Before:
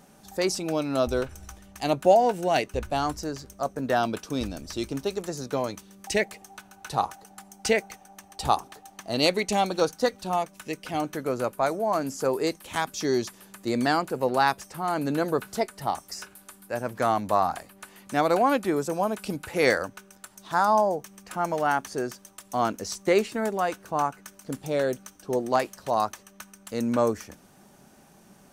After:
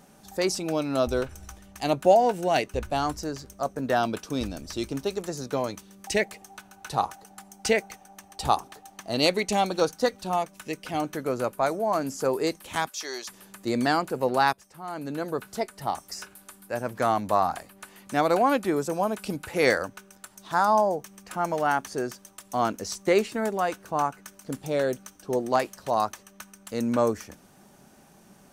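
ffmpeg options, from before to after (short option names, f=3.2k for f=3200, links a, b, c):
-filter_complex "[0:a]asplit=3[a][b][c];[a]afade=t=out:st=12.87:d=0.02[d];[b]highpass=820,afade=t=in:st=12.87:d=0.02,afade=t=out:st=13.27:d=0.02[e];[c]afade=t=in:st=13.27:d=0.02[f];[d][e][f]amix=inputs=3:normalize=0,asplit=2[g][h];[g]atrim=end=14.53,asetpts=PTS-STARTPTS,afade=t=out:st=14.526:d=0.004:c=hsin:silence=0.199526[i];[h]atrim=start=14.53,asetpts=PTS-STARTPTS,afade=t=in:d=1.59:silence=0.199526[j];[i][j]concat=n=2:v=0:a=1"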